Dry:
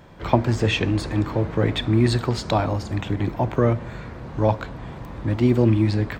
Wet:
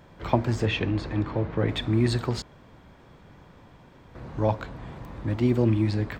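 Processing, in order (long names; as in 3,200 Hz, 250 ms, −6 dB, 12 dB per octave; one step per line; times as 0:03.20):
0:00.65–0:01.69: low-pass filter 4,200 Hz 12 dB per octave
0:02.42–0:04.15: fill with room tone
level −4.5 dB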